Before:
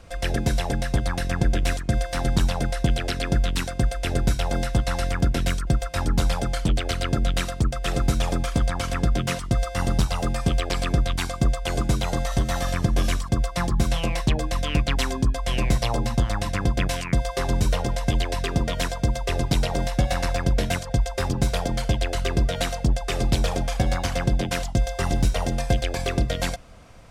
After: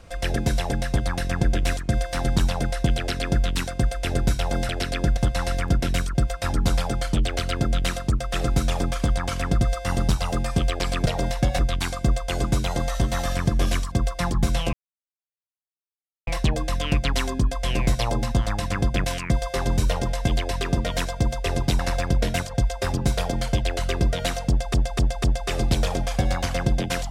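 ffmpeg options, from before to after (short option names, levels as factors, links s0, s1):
-filter_complex "[0:a]asplit=11[s0][s1][s2][s3][s4][s5][s6][s7][s8][s9][s10];[s0]atrim=end=4.692[s11];[s1]atrim=start=2.968:end=3.452[s12];[s2]atrim=start=4.688:end=9.132[s13];[s3]atrim=start=9.508:end=10.962[s14];[s4]atrim=start=19.618:end=20.152[s15];[s5]atrim=start=10.958:end=14.1,asetpts=PTS-STARTPTS,afade=t=out:st=3.138:d=0.004:c=hsin,apad=pad_dur=1.54[s16];[s6]atrim=start=14.1:end=19.622,asetpts=PTS-STARTPTS,afade=t=in:d=0.004:c=hsin[s17];[s7]atrim=start=20.148:end=23.102[s18];[s8]atrim=start=22.848:end=23.102[s19];[s9]atrim=start=22.848:end=23.102[s20];[s10]atrim=start=22.848[s21];[s11][s12]acrossfade=d=0.004:c1=hsin:c2=hsin[s22];[s22][s13]acrossfade=d=0.004:c1=hsin:c2=hsin[s23];[s23][s14]acrossfade=d=0.004:c1=hsin:c2=hsin[s24];[s24][s15]acrossfade=d=0.004:c1=hsin:c2=hsin[s25];[s16][s17]concat=n=2:v=0:a=1[s26];[s25][s26]acrossfade=d=0.004:c1=hsin:c2=hsin[s27];[s27][s18]acrossfade=d=0.004:c1=hsin:c2=hsin[s28];[s28][s19]acrossfade=d=0.004:c1=hsin:c2=hsin[s29];[s29][s20]acrossfade=d=0.004:c1=hsin:c2=hsin[s30];[s30][s21]acrossfade=d=0.004:c1=hsin:c2=hsin"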